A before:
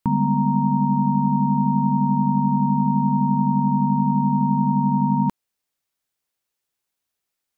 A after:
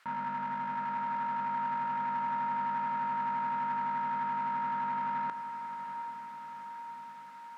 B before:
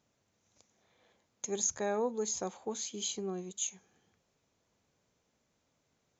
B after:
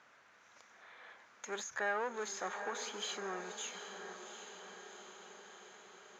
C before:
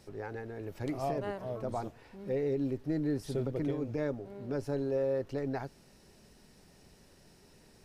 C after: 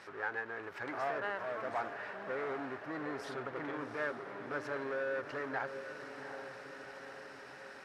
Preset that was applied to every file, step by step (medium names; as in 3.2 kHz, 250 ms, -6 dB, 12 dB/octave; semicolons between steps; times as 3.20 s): in parallel at +2 dB: compressor with a negative ratio -32 dBFS, ratio -1; on the sum: peak limiter -18.5 dBFS; power-law waveshaper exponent 0.7; band-pass filter 1.5 kHz, Q 2.2; on a send: echo that smears into a reverb 760 ms, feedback 64%, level -9 dB; on the sum: endings held to a fixed fall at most 290 dB/s; trim +2 dB